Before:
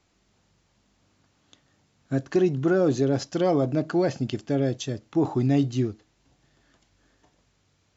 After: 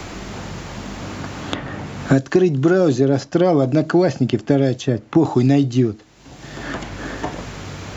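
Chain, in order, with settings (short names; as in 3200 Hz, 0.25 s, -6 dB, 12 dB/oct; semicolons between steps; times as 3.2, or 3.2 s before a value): three-band squash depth 100%; gain +7.5 dB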